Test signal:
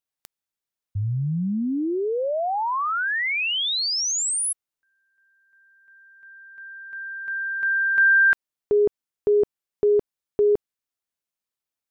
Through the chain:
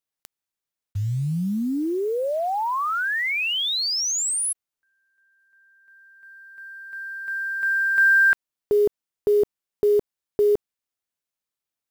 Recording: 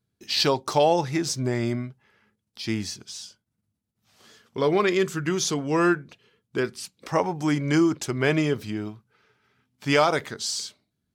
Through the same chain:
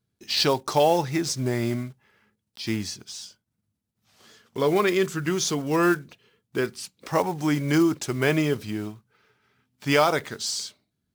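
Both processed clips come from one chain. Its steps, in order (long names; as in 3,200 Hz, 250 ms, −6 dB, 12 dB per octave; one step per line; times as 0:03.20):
one scale factor per block 5 bits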